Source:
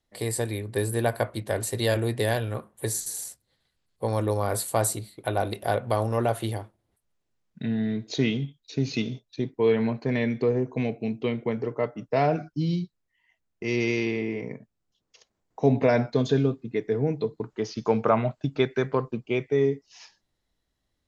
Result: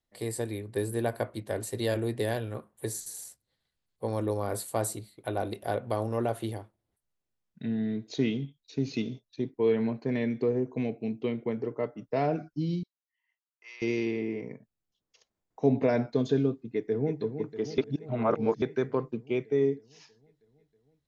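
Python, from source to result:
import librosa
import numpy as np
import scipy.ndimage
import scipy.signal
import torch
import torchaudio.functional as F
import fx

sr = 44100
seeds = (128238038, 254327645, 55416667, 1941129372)

y = fx.ladder_highpass(x, sr, hz=900.0, resonance_pct=35, at=(12.83, 13.82))
y = fx.echo_throw(y, sr, start_s=16.58, length_s=0.63, ms=320, feedback_pct=75, wet_db=-9.0)
y = fx.edit(y, sr, fx.reverse_span(start_s=17.78, length_s=0.84), tone=tone)
y = fx.dynamic_eq(y, sr, hz=310.0, q=0.88, threshold_db=-36.0, ratio=4.0, max_db=6)
y = F.gain(torch.from_numpy(y), -7.5).numpy()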